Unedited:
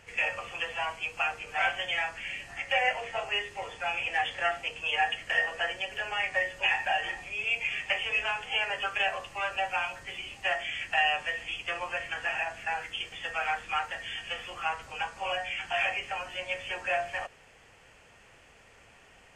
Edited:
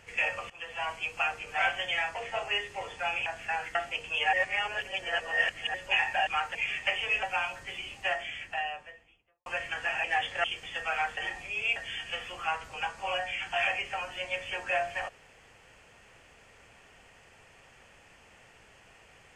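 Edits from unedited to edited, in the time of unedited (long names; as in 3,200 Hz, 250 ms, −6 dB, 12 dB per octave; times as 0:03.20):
0:00.50–0:00.91: fade in, from −17.5 dB
0:02.15–0:02.96: remove
0:04.07–0:04.47: swap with 0:12.44–0:12.93
0:05.05–0:06.46: reverse
0:06.99–0:07.58: swap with 0:13.66–0:13.94
0:08.26–0:09.63: remove
0:10.27–0:11.86: fade out and dull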